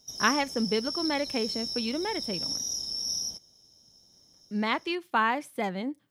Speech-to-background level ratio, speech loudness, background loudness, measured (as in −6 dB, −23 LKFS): 1.5 dB, −30.0 LKFS, −31.5 LKFS